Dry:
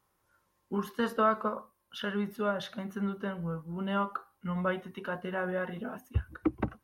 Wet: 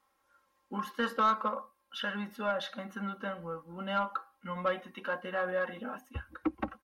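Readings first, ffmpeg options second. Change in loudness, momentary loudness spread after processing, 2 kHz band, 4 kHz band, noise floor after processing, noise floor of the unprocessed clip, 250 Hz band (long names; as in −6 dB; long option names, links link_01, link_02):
−1.0 dB, 13 LU, +1.0 dB, +2.5 dB, −75 dBFS, −76 dBFS, −5.0 dB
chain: -filter_complex "[0:a]aecho=1:1:3.7:0.72,asplit=2[link_01][link_02];[link_02]highpass=frequency=720:poles=1,volume=12dB,asoftclip=type=tanh:threshold=-13dB[link_03];[link_01][link_03]amix=inputs=2:normalize=0,lowpass=frequency=4100:poles=1,volume=-6dB,volume=-5.5dB"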